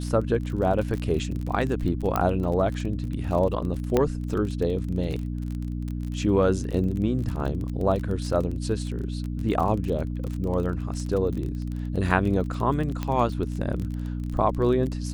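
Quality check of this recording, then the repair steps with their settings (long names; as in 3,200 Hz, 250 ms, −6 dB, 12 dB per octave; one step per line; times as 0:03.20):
surface crackle 29 per second −30 dBFS
mains hum 60 Hz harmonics 5 −30 dBFS
0:02.16: click −11 dBFS
0:03.97: click −9 dBFS
0:13.03: click −15 dBFS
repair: click removal
hum removal 60 Hz, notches 5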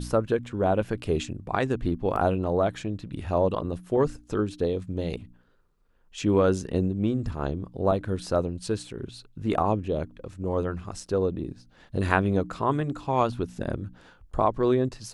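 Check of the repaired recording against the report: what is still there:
0:02.16: click
0:13.03: click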